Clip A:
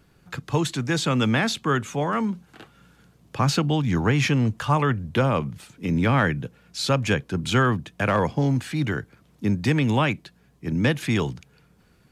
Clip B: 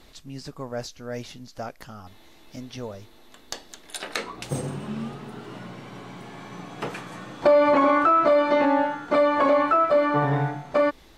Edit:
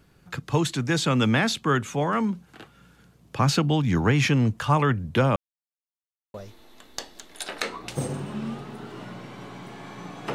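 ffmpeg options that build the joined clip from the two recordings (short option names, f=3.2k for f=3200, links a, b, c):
-filter_complex "[0:a]apad=whole_dur=10.34,atrim=end=10.34,asplit=2[a][b];[a]atrim=end=5.36,asetpts=PTS-STARTPTS,afade=t=out:st=5.356:d=0.004:c=hsin[c];[b]atrim=start=5.36:end=6.34,asetpts=PTS-STARTPTS,volume=0[d];[1:a]atrim=start=2.88:end=6.88,asetpts=PTS-STARTPTS,afade=t=in:d=0.004:c=hsin[e];[c][d][e]concat=n=3:v=0:a=1"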